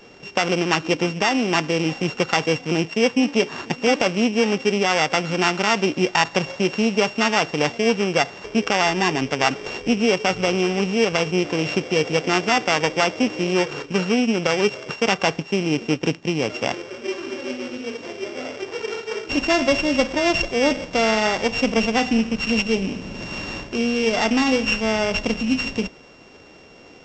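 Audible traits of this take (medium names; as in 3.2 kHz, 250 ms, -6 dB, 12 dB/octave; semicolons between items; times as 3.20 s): a buzz of ramps at a fixed pitch in blocks of 16 samples; A-law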